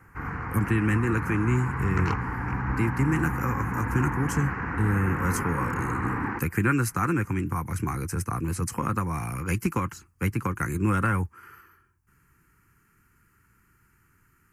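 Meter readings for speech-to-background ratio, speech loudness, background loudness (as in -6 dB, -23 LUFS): 2.5 dB, -28.0 LUFS, -30.5 LUFS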